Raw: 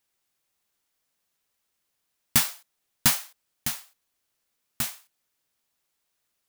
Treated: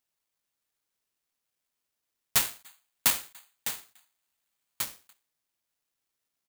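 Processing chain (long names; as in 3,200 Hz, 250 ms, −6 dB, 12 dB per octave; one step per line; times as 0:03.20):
0:02.36–0:04.84: flat-topped bell 1,400 Hz +10.5 dB 2.5 octaves
far-end echo of a speakerphone 290 ms, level −25 dB
bad sample-rate conversion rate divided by 8×, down none, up zero stuff
level −15.5 dB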